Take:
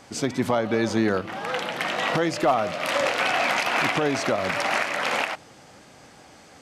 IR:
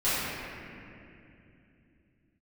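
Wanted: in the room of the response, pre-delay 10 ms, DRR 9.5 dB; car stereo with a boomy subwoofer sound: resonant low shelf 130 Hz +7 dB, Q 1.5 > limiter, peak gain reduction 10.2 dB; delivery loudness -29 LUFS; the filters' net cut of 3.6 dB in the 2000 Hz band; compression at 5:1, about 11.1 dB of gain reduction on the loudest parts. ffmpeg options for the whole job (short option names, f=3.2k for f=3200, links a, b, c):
-filter_complex "[0:a]equalizer=f=2k:t=o:g=-4.5,acompressor=threshold=-30dB:ratio=5,asplit=2[a][b];[1:a]atrim=start_sample=2205,adelay=10[c];[b][c]afir=irnorm=-1:irlink=0,volume=-23.5dB[d];[a][d]amix=inputs=2:normalize=0,lowshelf=f=130:t=q:w=1.5:g=7,volume=8.5dB,alimiter=limit=-20dB:level=0:latency=1"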